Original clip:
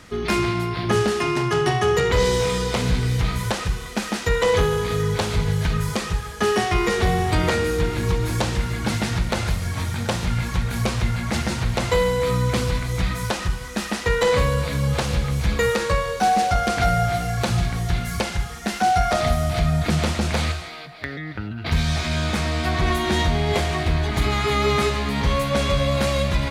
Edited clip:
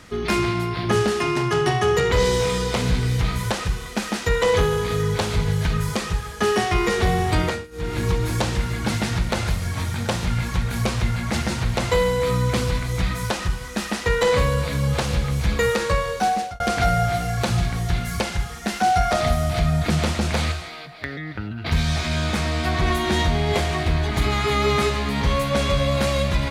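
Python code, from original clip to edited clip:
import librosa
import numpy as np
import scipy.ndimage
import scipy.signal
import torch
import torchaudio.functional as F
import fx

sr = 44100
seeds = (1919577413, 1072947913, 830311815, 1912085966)

y = fx.edit(x, sr, fx.fade_down_up(start_s=7.4, length_s=0.58, db=-23.0, fade_s=0.27),
    fx.fade_out_span(start_s=16.03, length_s=0.57, curve='qsin'), tone=tone)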